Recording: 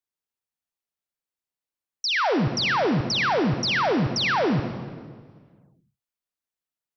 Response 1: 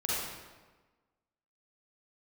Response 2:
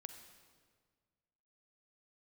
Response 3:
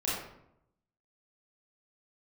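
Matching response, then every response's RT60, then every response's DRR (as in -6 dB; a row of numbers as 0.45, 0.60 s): 2; 1.3, 1.7, 0.80 s; -7.5, 7.0, -8.0 dB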